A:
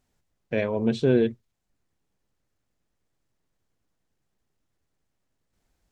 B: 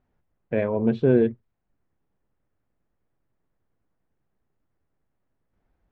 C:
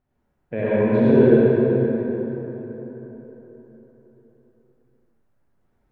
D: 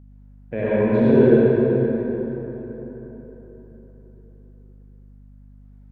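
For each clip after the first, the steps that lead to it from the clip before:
LPF 1700 Hz 12 dB/oct; gain +2 dB
reverb RT60 4.2 s, pre-delay 58 ms, DRR -9.5 dB; gain -4 dB
hum 50 Hz, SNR 24 dB

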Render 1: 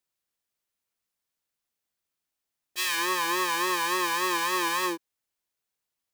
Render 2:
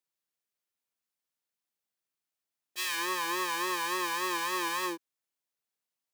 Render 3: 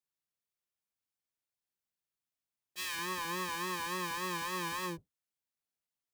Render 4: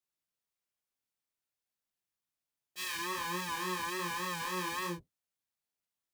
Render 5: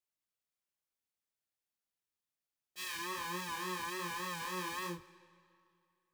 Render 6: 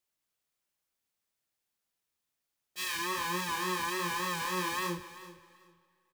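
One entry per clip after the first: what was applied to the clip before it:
HPF 120 Hz; gain -5 dB
octaver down 1 oct, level +2 dB; gain -5.5 dB
chorus 1.2 Hz, depth 4.9 ms; gain +3.5 dB
digital reverb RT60 2.5 s, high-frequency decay 0.85×, pre-delay 40 ms, DRR 17.5 dB; gain -3.5 dB
feedback echo 0.39 s, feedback 19%, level -16 dB; gain +6.5 dB

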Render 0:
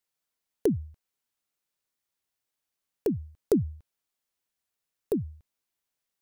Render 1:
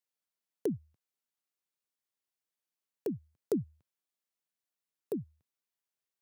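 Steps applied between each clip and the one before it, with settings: HPF 120 Hz 24 dB/oct; gain -7.5 dB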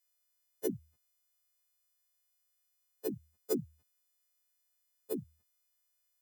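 frequency quantiser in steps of 3 st; gain -1 dB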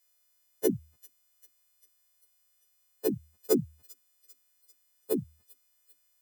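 thin delay 0.395 s, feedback 58%, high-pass 3100 Hz, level -17.5 dB; gain +8 dB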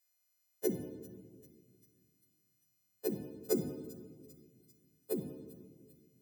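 reverb RT60 1.7 s, pre-delay 5 ms, DRR 4.5 dB; gain -7.5 dB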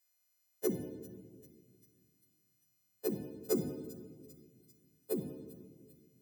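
soft clip -21 dBFS, distortion -22 dB; gain +1 dB

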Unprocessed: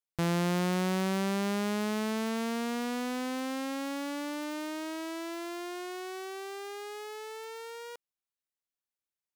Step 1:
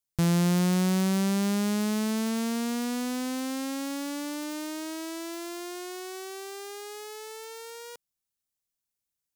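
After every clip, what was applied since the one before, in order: tone controls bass +10 dB, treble +9 dB; gain -1 dB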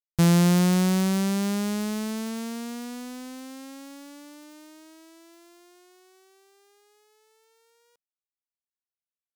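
upward expander 2.5:1, over -41 dBFS; gain +6 dB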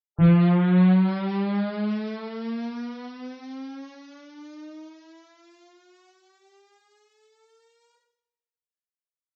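loudest bins only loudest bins 32; two-slope reverb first 0.64 s, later 1.8 s, from -24 dB, DRR -5 dB; gain -4.5 dB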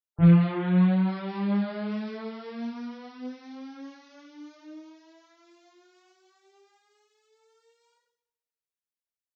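detuned doubles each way 17 cents

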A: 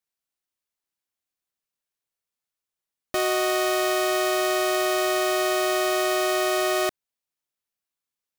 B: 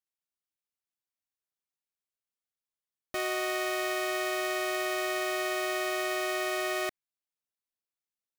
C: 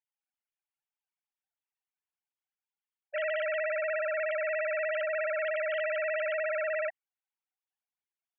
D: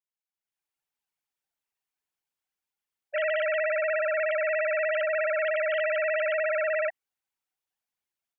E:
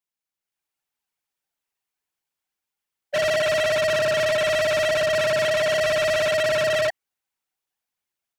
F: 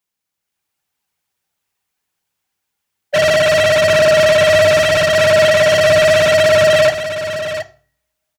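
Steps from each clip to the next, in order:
dynamic EQ 2100 Hz, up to +7 dB, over -44 dBFS, Q 2.2; gain -9 dB
sine-wave speech
AGC gain up to 11 dB; gain -6.5 dB
sample leveller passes 2; soft clip -27 dBFS, distortion -15 dB; gain +7.5 dB
echo 0.721 s -9.5 dB; on a send at -13 dB: reverb RT60 0.45 s, pre-delay 3 ms; on the sum: gain +9 dB

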